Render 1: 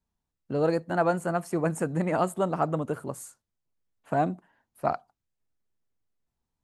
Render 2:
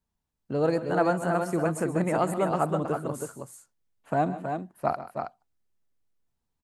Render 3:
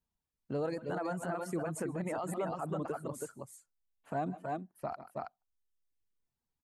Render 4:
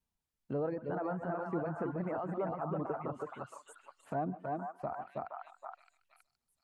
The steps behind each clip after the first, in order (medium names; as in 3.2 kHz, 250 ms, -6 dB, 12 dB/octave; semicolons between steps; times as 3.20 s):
multi-tap echo 131/153/313/322 ms -14.5/-18.5/-19/-6 dB
peak limiter -21 dBFS, peak gain reduction 10 dB; reverb removal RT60 0.83 s; trim -5 dB
repeats whose band climbs or falls 469 ms, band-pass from 1.1 kHz, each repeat 1.4 oct, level -1.5 dB; low-pass that closes with the level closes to 1.4 kHz, closed at -34.5 dBFS